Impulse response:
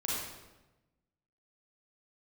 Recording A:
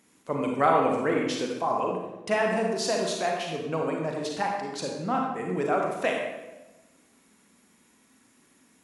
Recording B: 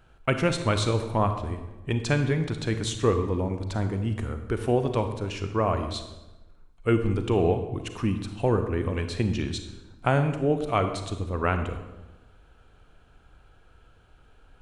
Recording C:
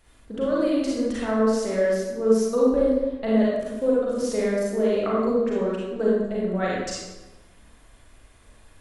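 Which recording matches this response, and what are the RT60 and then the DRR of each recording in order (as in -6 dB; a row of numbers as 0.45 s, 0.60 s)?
C; 1.1 s, 1.1 s, 1.1 s; 0.0 dB, 7.0 dB, -6.5 dB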